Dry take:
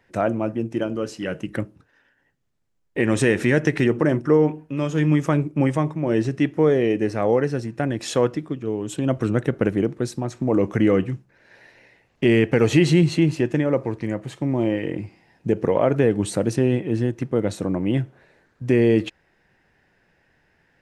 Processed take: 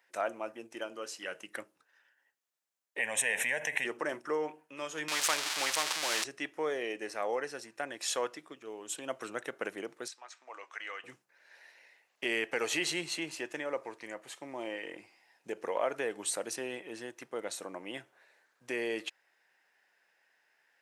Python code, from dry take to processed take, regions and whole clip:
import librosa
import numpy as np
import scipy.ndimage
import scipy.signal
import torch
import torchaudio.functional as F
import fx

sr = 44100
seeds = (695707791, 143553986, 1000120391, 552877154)

y = fx.chain(x, sr, fx.fixed_phaser(hz=1300.0, stages=6),
    fx.env_flatten(amount_pct=70), at=(2.99, 3.85))
y = fx.chain(y, sr, fx.crossing_spikes(level_db=-14.5),
    fx.lowpass(hz=3200.0, slope=12),
    fx.spectral_comp(ratio=2.0), at=(5.08, 6.24))
y = fx.chain(y, sr, fx.highpass(hz=1200.0, slope=12),
    fx.air_absorb(metres=100.0), at=(10.08, 11.04))
y = scipy.signal.sosfilt(scipy.signal.butter(2, 730.0, 'highpass', fs=sr, output='sos'), y)
y = fx.high_shelf(y, sr, hz=6200.0, db=9.5)
y = F.gain(torch.from_numpy(y), -7.0).numpy()